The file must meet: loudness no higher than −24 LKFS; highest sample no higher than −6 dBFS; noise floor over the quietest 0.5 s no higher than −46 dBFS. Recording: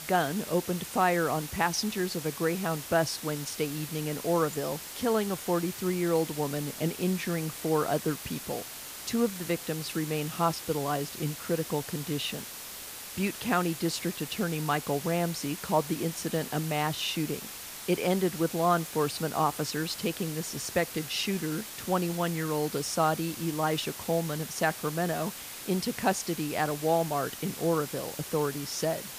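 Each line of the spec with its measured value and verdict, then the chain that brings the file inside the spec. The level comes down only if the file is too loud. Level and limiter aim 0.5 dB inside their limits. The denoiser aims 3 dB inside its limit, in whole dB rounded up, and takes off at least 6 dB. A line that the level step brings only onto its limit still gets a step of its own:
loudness −30.0 LKFS: in spec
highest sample −12.0 dBFS: in spec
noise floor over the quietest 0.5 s −42 dBFS: out of spec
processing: broadband denoise 7 dB, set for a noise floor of −42 dBFS

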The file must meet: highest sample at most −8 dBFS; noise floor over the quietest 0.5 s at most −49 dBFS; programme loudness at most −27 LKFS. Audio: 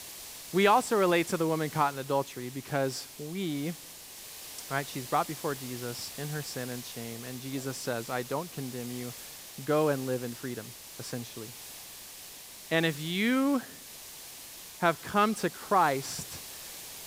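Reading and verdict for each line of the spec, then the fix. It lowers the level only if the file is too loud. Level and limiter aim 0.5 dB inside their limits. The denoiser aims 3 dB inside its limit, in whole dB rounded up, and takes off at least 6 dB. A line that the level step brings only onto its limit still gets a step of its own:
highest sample −10.0 dBFS: in spec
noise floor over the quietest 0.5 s −47 dBFS: out of spec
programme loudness −31.0 LKFS: in spec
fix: broadband denoise 6 dB, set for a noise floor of −47 dBFS

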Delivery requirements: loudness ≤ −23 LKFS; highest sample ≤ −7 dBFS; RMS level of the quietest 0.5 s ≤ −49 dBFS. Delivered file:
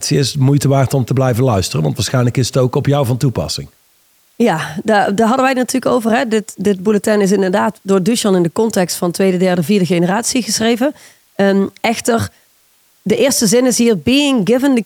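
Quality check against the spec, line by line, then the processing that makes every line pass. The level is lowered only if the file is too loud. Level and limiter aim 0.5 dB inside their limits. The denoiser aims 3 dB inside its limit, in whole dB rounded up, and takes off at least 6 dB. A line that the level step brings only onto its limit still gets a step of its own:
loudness −14.0 LKFS: out of spec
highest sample −3.0 dBFS: out of spec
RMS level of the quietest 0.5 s −54 dBFS: in spec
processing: level −9.5 dB

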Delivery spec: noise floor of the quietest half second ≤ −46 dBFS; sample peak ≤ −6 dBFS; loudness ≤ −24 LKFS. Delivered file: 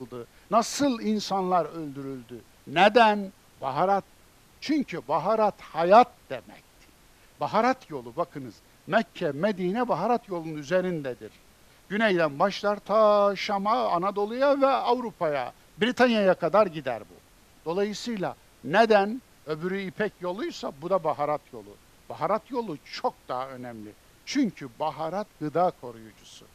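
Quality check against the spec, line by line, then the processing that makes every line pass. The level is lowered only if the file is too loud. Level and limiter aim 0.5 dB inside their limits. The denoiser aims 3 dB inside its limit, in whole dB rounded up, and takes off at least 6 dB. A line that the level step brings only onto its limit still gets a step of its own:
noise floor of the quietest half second −56 dBFS: in spec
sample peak −5.0 dBFS: out of spec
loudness −26.0 LKFS: in spec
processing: brickwall limiter −6.5 dBFS

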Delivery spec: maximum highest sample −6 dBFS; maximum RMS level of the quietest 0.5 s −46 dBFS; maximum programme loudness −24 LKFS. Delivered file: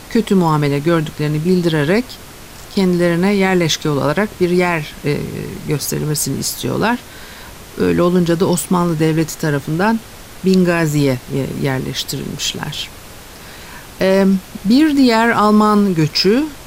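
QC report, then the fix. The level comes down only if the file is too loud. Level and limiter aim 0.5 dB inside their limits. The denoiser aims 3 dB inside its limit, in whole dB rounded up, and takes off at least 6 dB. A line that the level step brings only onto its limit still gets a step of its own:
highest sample −3.5 dBFS: out of spec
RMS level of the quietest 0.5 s −35 dBFS: out of spec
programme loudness −16.0 LKFS: out of spec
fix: broadband denoise 6 dB, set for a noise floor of −35 dBFS
level −8.5 dB

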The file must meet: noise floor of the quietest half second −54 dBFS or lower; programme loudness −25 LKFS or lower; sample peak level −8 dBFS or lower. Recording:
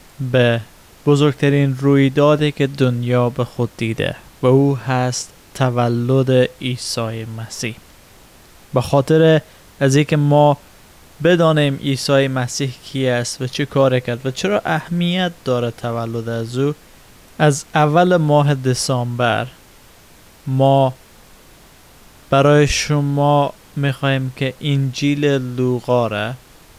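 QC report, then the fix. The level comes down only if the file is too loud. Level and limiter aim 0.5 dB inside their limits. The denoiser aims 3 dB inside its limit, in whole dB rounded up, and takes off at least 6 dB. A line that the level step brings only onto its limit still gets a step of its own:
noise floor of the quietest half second −46 dBFS: out of spec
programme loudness −17.0 LKFS: out of spec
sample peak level −3.0 dBFS: out of spec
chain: level −8.5 dB

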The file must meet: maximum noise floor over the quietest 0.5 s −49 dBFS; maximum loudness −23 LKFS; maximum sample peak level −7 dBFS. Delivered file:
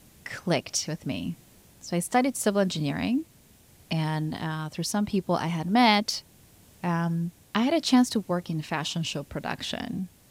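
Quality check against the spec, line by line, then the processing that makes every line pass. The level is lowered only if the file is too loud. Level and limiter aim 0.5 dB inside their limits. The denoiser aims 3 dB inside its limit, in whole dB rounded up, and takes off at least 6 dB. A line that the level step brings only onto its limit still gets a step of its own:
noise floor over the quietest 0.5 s −56 dBFS: in spec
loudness −27.5 LKFS: in spec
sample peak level −7.5 dBFS: in spec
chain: no processing needed

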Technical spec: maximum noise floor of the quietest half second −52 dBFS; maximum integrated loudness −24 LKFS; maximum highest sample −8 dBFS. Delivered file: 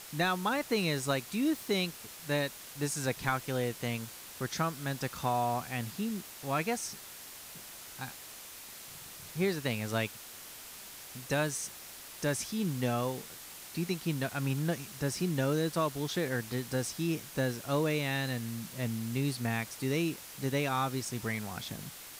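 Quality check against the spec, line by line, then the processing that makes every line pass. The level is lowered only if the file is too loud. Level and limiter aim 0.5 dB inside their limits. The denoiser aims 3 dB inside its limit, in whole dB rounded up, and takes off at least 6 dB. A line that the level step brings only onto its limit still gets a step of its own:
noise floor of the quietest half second −48 dBFS: out of spec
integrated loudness −33.5 LKFS: in spec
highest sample −18.0 dBFS: in spec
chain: broadband denoise 7 dB, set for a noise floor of −48 dBFS

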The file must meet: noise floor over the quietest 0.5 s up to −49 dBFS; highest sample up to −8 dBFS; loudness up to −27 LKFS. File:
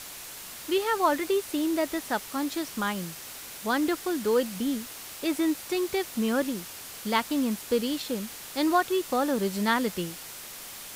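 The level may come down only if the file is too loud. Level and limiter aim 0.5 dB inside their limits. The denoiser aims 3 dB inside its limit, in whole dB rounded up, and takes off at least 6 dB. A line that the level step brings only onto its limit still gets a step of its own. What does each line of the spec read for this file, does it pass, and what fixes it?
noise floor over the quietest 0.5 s −42 dBFS: out of spec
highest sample −9.5 dBFS: in spec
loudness −28.0 LKFS: in spec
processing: broadband denoise 10 dB, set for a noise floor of −42 dBFS

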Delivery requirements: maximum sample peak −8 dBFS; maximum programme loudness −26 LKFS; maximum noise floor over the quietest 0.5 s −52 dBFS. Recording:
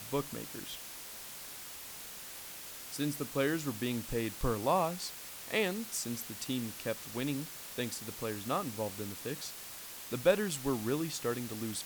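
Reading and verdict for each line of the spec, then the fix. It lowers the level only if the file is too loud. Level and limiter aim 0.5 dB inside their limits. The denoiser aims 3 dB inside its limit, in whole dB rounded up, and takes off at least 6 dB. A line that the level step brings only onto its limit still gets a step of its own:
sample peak −14.5 dBFS: in spec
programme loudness −36.0 LKFS: in spec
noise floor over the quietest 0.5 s −47 dBFS: out of spec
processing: broadband denoise 8 dB, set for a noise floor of −47 dBFS

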